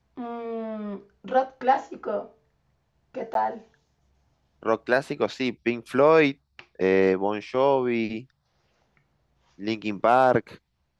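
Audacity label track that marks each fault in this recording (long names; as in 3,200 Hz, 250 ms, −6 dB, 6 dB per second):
3.340000	3.350000	drop-out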